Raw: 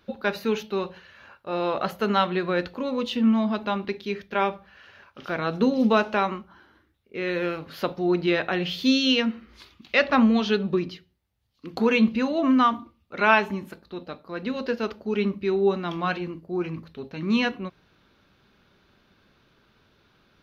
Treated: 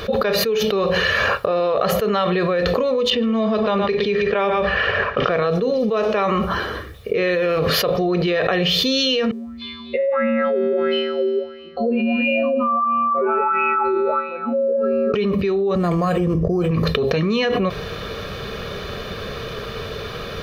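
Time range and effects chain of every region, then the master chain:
3.1–5.46 low-pass opened by the level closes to 2200 Hz, open at -17.5 dBFS + echo 0.116 s -11.5 dB
9.31–15.14 spectral contrast raised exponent 2.4 + resonator 78 Hz, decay 2 s, harmonics odd, mix 100% + LFO bell 1.5 Hz 330–2700 Hz +17 dB
15.75–16.71 tilt -2.5 dB/oct + decimation joined by straight lines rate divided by 8×
whole clip: bell 450 Hz +11 dB 0.31 oct; comb 1.7 ms, depth 56%; fast leveller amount 100%; gain -10 dB

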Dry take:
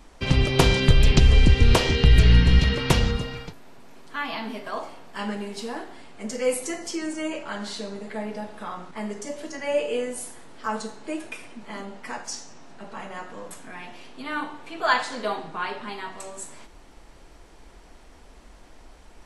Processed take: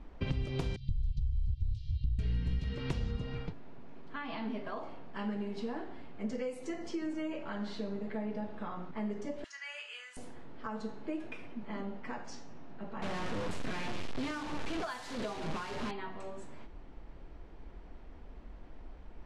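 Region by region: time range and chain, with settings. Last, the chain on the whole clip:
0.76–2.19 elliptic band-stop 110–4000 Hz, stop band 50 dB + tape spacing loss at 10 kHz 28 dB
9.44–10.17 Chebyshev high-pass 1400 Hz, order 3 + high shelf 4200 Hz +11.5 dB
13.02–15.91 delta modulation 64 kbps, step -24.5 dBFS + high shelf 5600 Hz +7 dB
whole clip: low-pass opened by the level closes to 2900 Hz, open at -11.5 dBFS; compressor 12:1, threshold -30 dBFS; low shelf 440 Hz +10 dB; gain -8.5 dB

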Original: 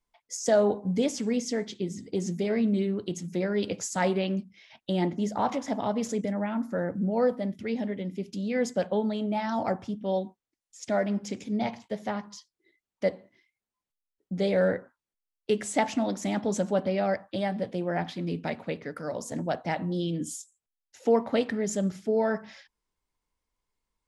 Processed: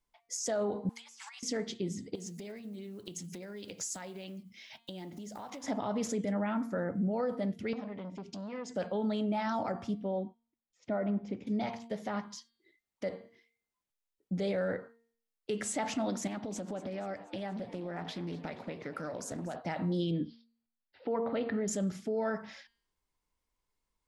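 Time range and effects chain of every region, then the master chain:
0.89–1.43 steep high-pass 830 Hz 72 dB/oct + negative-ratio compressor -51 dBFS
2.15–5.64 block floating point 7-bit + compressor 10:1, threshold -40 dBFS + high shelf 3200 Hz +9 dB
7.73–8.75 LPF 7300 Hz 24 dB/oct + compressor 4:1, threshold -35 dBFS + core saturation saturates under 750 Hz
10.04–11.47 tape spacing loss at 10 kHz 38 dB + notch 1700 Hz, Q 16
16.27–19.56 compressor 16:1, threshold -33 dBFS + frequency-shifting echo 0.239 s, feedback 60%, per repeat +100 Hz, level -16.5 dB + Doppler distortion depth 0.22 ms
20.11–21.68 steep low-pass 4800 Hz 96 dB/oct + high shelf 3600 Hz -12 dB
whole clip: de-hum 231.1 Hz, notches 21; dynamic EQ 1300 Hz, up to +5 dB, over -52 dBFS, Q 4.4; limiter -24 dBFS; gain -1 dB

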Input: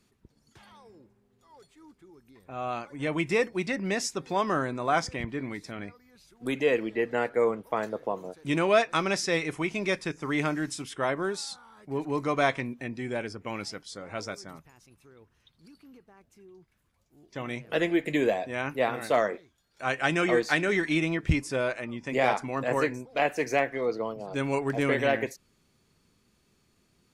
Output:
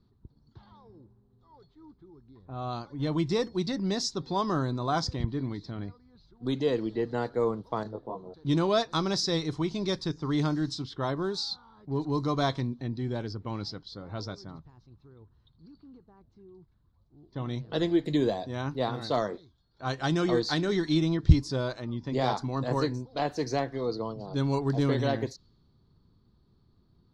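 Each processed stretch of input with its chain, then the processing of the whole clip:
7.83–8.34 LPF 1400 Hz 6 dB/oct + detuned doubles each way 16 cents
whole clip: low-pass opened by the level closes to 2000 Hz, open at -24 dBFS; EQ curve 120 Hz 0 dB, 210 Hz -7 dB, 320 Hz -7 dB, 580 Hz -14 dB, 1000 Hz -9 dB, 2500 Hz -25 dB, 4100 Hz +2 dB, 9000 Hz -21 dB; gain +8.5 dB

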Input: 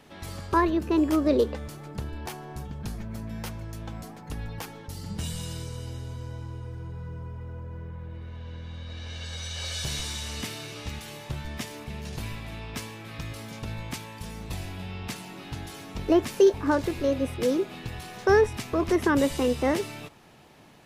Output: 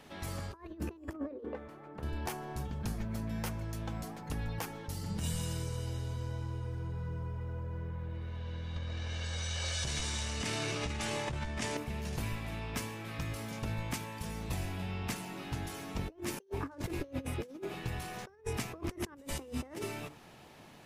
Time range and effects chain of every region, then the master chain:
1.13–2.03 three-band isolator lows -12 dB, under 220 Hz, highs -21 dB, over 2300 Hz + resonator 100 Hz, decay 0.23 s, harmonics odd, mix 40%
8.76–11.77 LPF 9000 Hz 24 dB/oct + fast leveller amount 100%
whole clip: notches 50/100/150/200/250/300/350/400/450 Hz; dynamic EQ 3900 Hz, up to -5 dB, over -52 dBFS, Q 1.5; negative-ratio compressor -32 dBFS, ratio -0.5; gain -4.5 dB

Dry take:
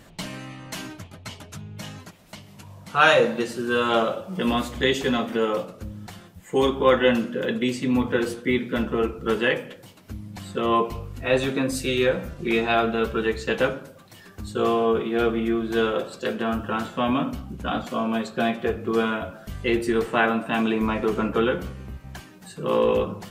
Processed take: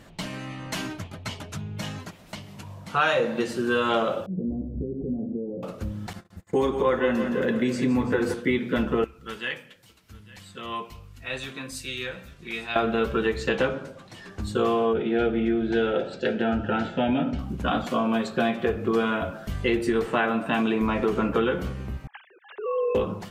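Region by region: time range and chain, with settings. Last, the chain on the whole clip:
4.26–5.63 compressor 5:1, threshold -24 dBFS + Gaussian blur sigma 22 samples
6.13–8.34 bell 3100 Hz -8.5 dB 0.5 oct + gate -45 dBFS, range -36 dB + feedback echo 0.166 s, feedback 55%, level -11 dB
9.04–12.76 passive tone stack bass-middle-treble 5-5-5 + echo 0.853 s -20.5 dB
13.49–14.42 LPF 8700 Hz + doubler 15 ms -11.5 dB
14.93–17.39 Butterworth band-stop 1100 Hz, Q 3.1 + air absorption 120 m
22.07–22.95 sine-wave speech + compressor 2:1, threshold -33 dBFS
whole clip: AGC gain up to 4 dB; high shelf 7300 Hz -6.5 dB; compressor 3:1, threshold -21 dBFS

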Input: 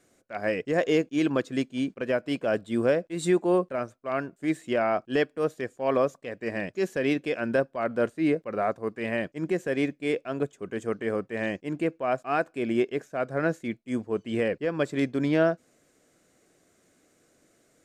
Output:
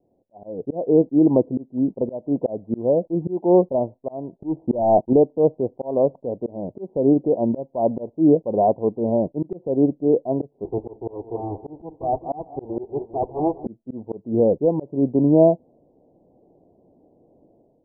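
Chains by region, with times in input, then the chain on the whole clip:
4.37–5.13 sample leveller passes 2 + LPF 1100 Hz
10.64–13.66 minimum comb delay 2.6 ms + HPF 43 Hz + feedback echo 0.201 s, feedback 50%, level -17 dB
whole clip: steep low-pass 940 Hz 96 dB/oct; auto swell 0.311 s; AGC gain up to 10 dB

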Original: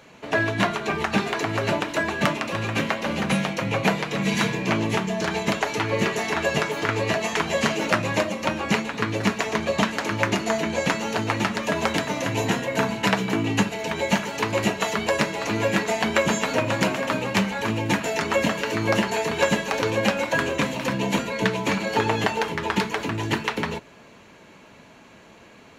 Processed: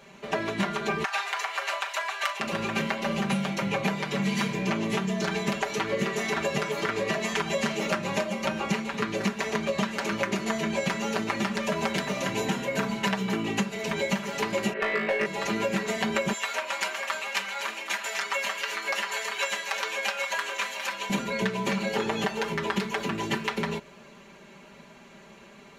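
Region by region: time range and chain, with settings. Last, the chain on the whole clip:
1.04–2.4 HPF 770 Hz 24 dB/oct + doubler 38 ms -13 dB
14.73–15.26 speaker cabinet 310–2700 Hz, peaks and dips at 480 Hz +9 dB, 880 Hz -7 dB, 1800 Hz +6 dB + hard clip -14.5 dBFS + flutter echo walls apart 3.2 m, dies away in 0.44 s
16.33–21.1 HPF 1000 Hz + echo 0.782 s -12 dB
whole clip: comb 5.1 ms, depth 97%; compressor 4:1, threshold -20 dBFS; gain -4 dB

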